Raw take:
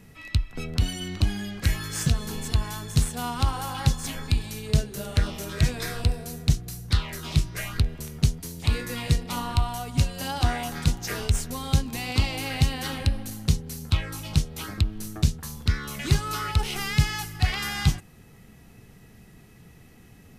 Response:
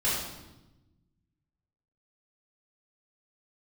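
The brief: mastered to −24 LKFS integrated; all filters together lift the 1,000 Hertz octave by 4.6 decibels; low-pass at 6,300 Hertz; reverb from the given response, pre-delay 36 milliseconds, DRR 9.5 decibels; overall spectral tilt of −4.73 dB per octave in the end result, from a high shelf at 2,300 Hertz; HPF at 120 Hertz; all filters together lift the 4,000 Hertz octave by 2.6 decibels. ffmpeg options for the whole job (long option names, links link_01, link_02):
-filter_complex "[0:a]highpass=120,lowpass=6300,equalizer=frequency=1000:width_type=o:gain=6.5,highshelf=frequency=2300:gain=-4,equalizer=frequency=4000:width_type=o:gain=7,asplit=2[link_01][link_02];[1:a]atrim=start_sample=2205,adelay=36[link_03];[link_02][link_03]afir=irnorm=-1:irlink=0,volume=-20dB[link_04];[link_01][link_04]amix=inputs=2:normalize=0,volume=4.5dB"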